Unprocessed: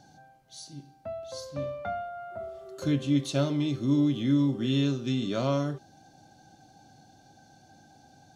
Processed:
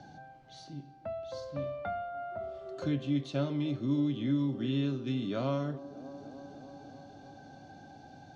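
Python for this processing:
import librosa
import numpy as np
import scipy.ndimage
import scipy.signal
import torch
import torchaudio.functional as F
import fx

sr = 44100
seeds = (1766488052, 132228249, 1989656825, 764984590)

y = scipy.signal.sosfilt(scipy.signal.butter(2, 3800.0, 'lowpass', fs=sr, output='sos'), x)
y = fx.echo_wet_bandpass(y, sr, ms=297, feedback_pct=68, hz=450.0, wet_db=-17)
y = fx.band_squash(y, sr, depth_pct=40)
y = F.gain(torch.from_numpy(y), -4.5).numpy()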